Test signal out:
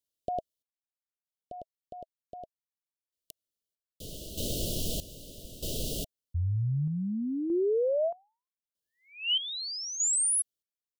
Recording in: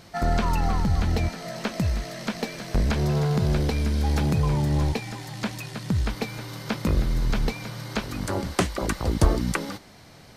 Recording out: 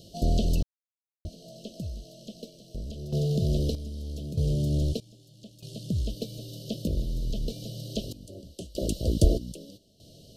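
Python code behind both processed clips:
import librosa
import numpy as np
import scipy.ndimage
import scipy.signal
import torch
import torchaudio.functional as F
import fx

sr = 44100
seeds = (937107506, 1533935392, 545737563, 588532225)

y = scipy.signal.sosfilt(scipy.signal.cheby1(5, 1.0, [650.0, 2900.0], 'bandstop', fs=sr, output='sos'), x)
y = fx.tremolo_random(y, sr, seeds[0], hz=1.6, depth_pct=100)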